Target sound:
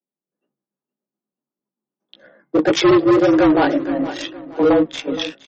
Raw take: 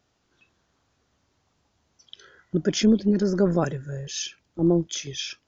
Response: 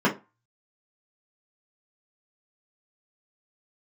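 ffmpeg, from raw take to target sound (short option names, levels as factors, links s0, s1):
-filter_complex "[0:a]aemphasis=mode=reproduction:type=75kf,agate=range=0.0224:threshold=0.00251:ratio=3:detection=peak,bass=f=250:g=2,treble=f=4000:g=5,aecho=1:1:4.6:0.3,acrossover=split=140|670[s0][s1][s2];[s2]dynaudnorm=f=310:g=3:m=1.58[s3];[s0][s1][s3]amix=inputs=3:normalize=0,afreqshift=140,flanger=delay=15:depth=6.6:speed=1.8,asoftclip=type=hard:threshold=0.0841,adynamicsmooth=sensitivity=4.5:basefreq=740,aecho=1:1:468|936|1404:0.141|0.0452|0.0145,alimiter=level_in=15:limit=0.891:release=50:level=0:latency=1,volume=0.398" -ar 48000 -c:a libmp3lame -b:a 32k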